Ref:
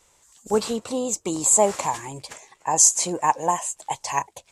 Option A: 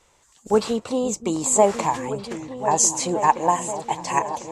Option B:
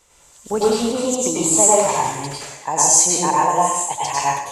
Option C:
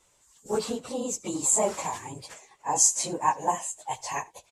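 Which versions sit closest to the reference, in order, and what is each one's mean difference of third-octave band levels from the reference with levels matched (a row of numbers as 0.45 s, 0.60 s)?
C, A, B; 2.0 dB, 5.5 dB, 8.5 dB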